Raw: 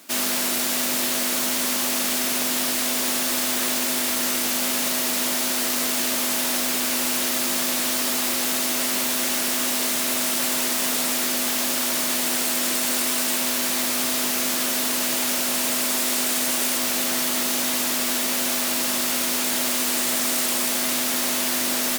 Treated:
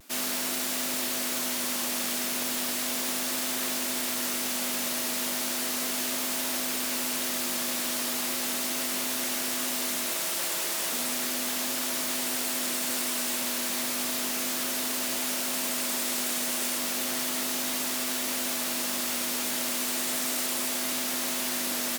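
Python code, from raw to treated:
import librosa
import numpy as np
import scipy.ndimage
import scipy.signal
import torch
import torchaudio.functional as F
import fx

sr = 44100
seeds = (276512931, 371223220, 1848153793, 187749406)

y = fx.hum_notches(x, sr, base_hz=50, count=5, at=(10.05, 10.93))
y = fx.vibrato(y, sr, rate_hz=0.35, depth_cents=18.0)
y = F.gain(torch.from_numpy(y), -6.5).numpy()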